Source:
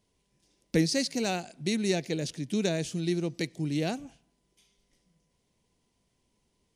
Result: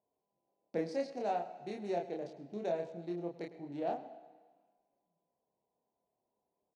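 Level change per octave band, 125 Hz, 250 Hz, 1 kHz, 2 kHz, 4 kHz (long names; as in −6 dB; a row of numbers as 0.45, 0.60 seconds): −18.0, −13.0, +1.0, −15.0, −22.0 decibels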